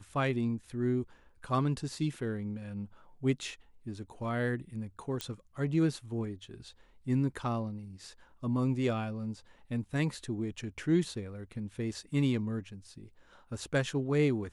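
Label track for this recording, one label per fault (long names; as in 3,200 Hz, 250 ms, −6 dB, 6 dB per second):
5.210000	5.210000	click −19 dBFS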